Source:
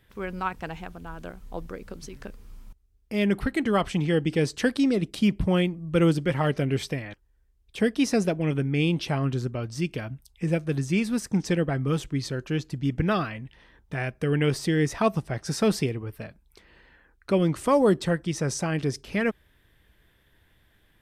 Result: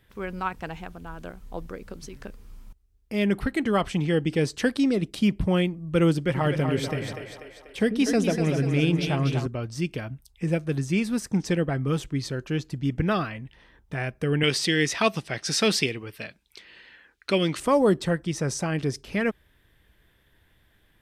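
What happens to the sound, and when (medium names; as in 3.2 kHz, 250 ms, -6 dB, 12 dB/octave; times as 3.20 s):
6.21–9.46 s: two-band feedback delay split 360 Hz, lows 93 ms, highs 244 ms, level -6 dB
14.43–17.60 s: frequency weighting D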